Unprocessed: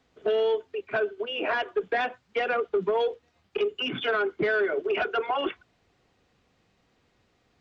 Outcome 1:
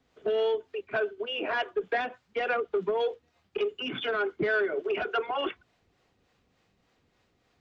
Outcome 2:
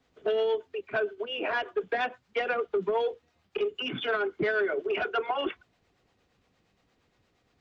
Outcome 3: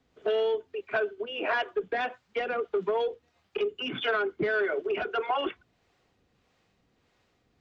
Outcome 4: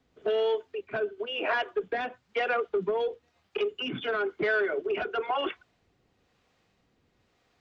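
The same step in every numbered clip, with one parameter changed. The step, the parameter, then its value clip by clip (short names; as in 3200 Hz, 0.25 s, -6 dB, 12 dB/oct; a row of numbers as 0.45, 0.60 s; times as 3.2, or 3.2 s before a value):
harmonic tremolo, rate: 3.4, 8.6, 1.6, 1 Hz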